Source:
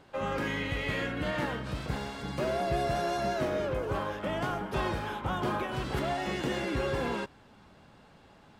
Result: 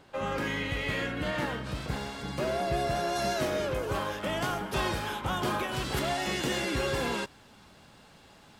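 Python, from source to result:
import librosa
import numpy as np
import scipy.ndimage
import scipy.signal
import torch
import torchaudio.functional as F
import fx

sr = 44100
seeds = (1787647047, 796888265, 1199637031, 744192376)

y = fx.high_shelf(x, sr, hz=3100.0, db=fx.steps((0.0, 4.0), (3.15, 12.0)))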